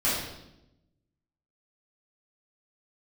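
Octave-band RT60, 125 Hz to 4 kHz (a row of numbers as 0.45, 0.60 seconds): 1.4, 1.2, 1.0, 0.80, 0.75, 0.75 seconds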